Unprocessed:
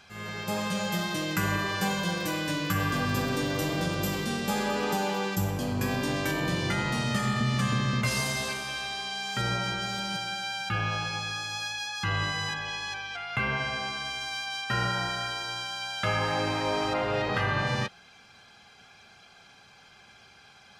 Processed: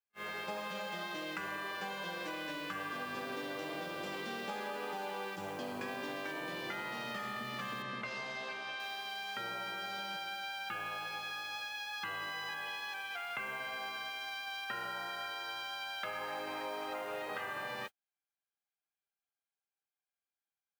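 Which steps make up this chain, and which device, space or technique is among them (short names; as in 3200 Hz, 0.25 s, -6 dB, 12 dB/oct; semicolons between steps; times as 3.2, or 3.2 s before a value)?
baby monitor (BPF 370–3500 Hz; compressor 10:1, threshold -37 dBFS, peak gain reduction 12.5 dB; white noise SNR 19 dB; gate -42 dBFS, range -46 dB); 7.82–8.8 air absorption 77 m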